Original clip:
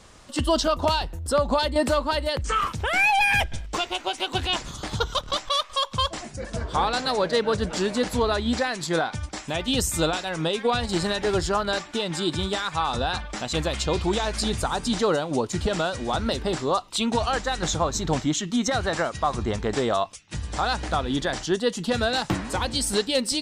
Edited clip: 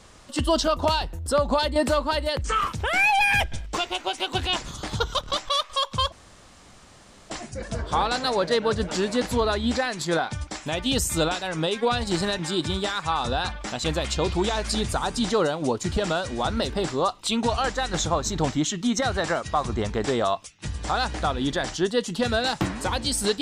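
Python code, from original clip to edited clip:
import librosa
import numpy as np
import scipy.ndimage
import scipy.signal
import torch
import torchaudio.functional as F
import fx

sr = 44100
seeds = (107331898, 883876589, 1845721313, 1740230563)

y = fx.edit(x, sr, fx.insert_room_tone(at_s=6.12, length_s=1.18),
    fx.cut(start_s=11.21, length_s=0.87), tone=tone)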